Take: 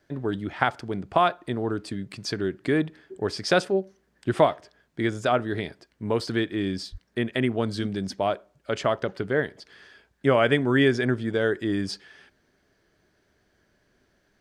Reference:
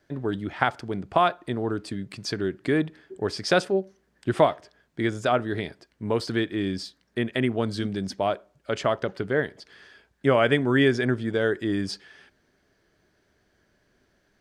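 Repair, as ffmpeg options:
-filter_complex "[0:a]asplit=3[s0][s1][s2];[s0]afade=t=out:st=6.91:d=0.02[s3];[s1]highpass=f=140:w=0.5412,highpass=f=140:w=1.3066,afade=t=in:st=6.91:d=0.02,afade=t=out:st=7.03:d=0.02[s4];[s2]afade=t=in:st=7.03:d=0.02[s5];[s3][s4][s5]amix=inputs=3:normalize=0"

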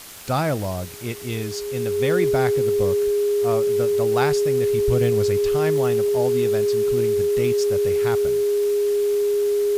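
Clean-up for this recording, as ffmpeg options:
-af "adeclick=t=4,bandreject=f=410:w=30,afwtdn=0.011"

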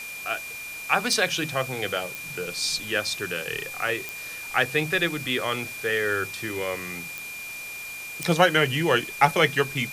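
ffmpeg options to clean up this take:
-af "adeclick=t=4,bandreject=f=2400:w=30,afwtdn=0.0089"

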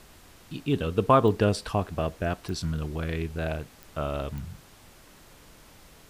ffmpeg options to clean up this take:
-af "adeclick=t=4,afftdn=nr=20:nf=-53"

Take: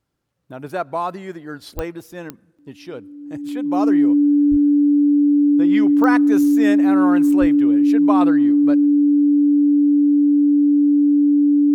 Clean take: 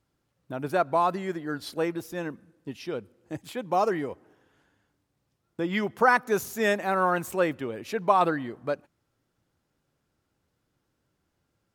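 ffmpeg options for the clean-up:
-filter_complex "[0:a]adeclick=t=4,bandreject=f=290:w=30,asplit=3[s0][s1][s2];[s0]afade=t=out:st=1.75:d=0.02[s3];[s1]highpass=f=140:w=0.5412,highpass=f=140:w=1.3066,afade=t=in:st=1.75:d=0.02,afade=t=out:st=1.87:d=0.02[s4];[s2]afade=t=in:st=1.87:d=0.02[s5];[s3][s4][s5]amix=inputs=3:normalize=0,asplit=3[s6][s7][s8];[s6]afade=t=out:st=4.5:d=0.02[s9];[s7]highpass=f=140:w=0.5412,highpass=f=140:w=1.3066,afade=t=in:st=4.5:d=0.02,afade=t=out:st=4.62:d=0.02[s10];[s8]afade=t=in:st=4.62:d=0.02[s11];[s9][s10][s11]amix=inputs=3:normalize=0,asplit=3[s12][s13][s14];[s12]afade=t=out:st=7.4:d=0.02[s15];[s13]highpass=f=140:w=0.5412,highpass=f=140:w=1.3066,afade=t=in:st=7.4:d=0.02,afade=t=out:st=7.52:d=0.02[s16];[s14]afade=t=in:st=7.52:d=0.02[s17];[s15][s16][s17]amix=inputs=3:normalize=0"

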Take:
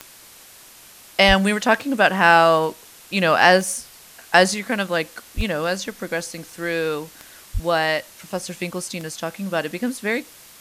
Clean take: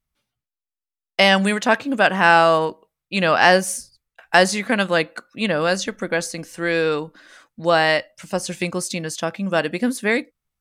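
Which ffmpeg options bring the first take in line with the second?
-filter_complex "[0:a]adeclick=t=4,asplit=3[s0][s1][s2];[s0]afade=t=out:st=1.27:d=0.02[s3];[s1]highpass=f=140:w=0.5412,highpass=f=140:w=1.3066,afade=t=in:st=1.27:d=0.02,afade=t=out:st=1.39:d=0.02[s4];[s2]afade=t=in:st=1.39:d=0.02[s5];[s3][s4][s5]amix=inputs=3:normalize=0,asplit=3[s6][s7][s8];[s6]afade=t=out:st=5.36:d=0.02[s9];[s7]highpass=f=140:w=0.5412,highpass=f=140:w=1.3066,afade=t=in:st=5.36:d=0.02,afade=t=out:st=5.48:d=0.02[s10];[s8]afade=t=in:st=5.48:d=0.02[s11];[s9][s10][s11]amix=inputs=3:normalize=0,asplit=3[s12][s13][s14];[s12]afade=t=out:st=7.53:d=0.02[s15];[s13]highpass=f=140:w=0.5412,highpass=f=140:w=1.3066,afade=t=in:st=7.53:d=0.02,afade=t=out:st=7.65:d=0.02[s16];[s14]afade=t=in:st=7.65:d=0.02[s17];[s15][s16][s17]amix=inputs=3:normalize=0,afwtdn=0.0063,asetnsamples=n=441:p=0,asendcmd='4.54 volume volume 3.5dB',volume=1"

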